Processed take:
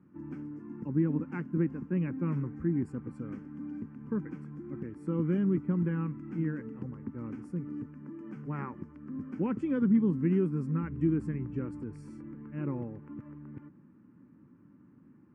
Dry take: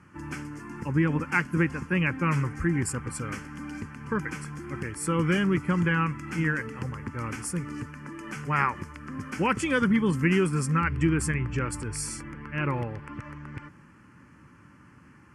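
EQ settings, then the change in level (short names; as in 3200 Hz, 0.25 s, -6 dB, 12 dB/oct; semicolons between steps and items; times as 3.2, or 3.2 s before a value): band-pass 250 Hz, Q 1.6; 0.0 dB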